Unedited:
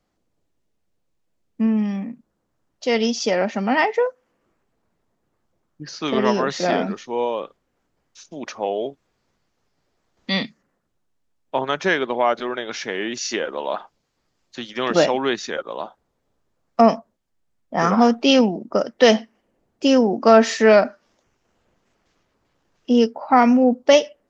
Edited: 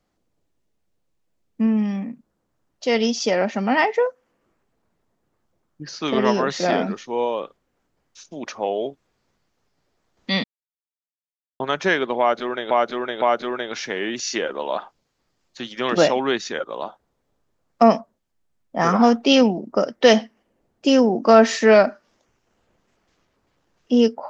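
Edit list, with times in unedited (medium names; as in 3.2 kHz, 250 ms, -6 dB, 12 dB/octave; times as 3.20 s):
10.44–11.60 s: mute
12.20–12.71 s: loop, 3 plays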